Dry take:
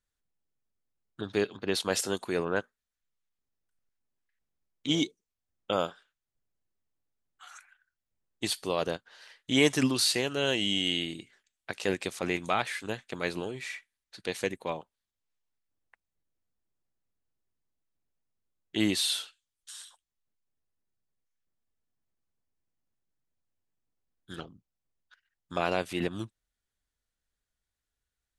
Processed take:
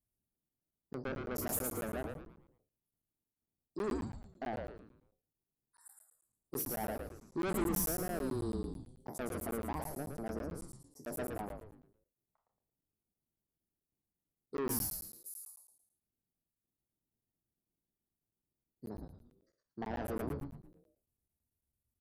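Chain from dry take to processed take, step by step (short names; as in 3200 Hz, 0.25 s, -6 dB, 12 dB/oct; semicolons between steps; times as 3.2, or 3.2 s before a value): spectral trails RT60 0.40 s; HPF 48 Hz 6 dB/oct; spectral gate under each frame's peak -25 dB strong; Chebyshev band-stop 420–9200 Hz, order 2; soft clip -31.5 dBFS, distortion -7 dB; bell 410 Hz -11 dB 0.46 oct; varispeed +29%; frequency-shifting echo 0.113 s, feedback 40%, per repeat -150 Hz, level -4 dB; crackling interface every 0.11 s, samples 512, zero, from 0.49; gain +1.5 dB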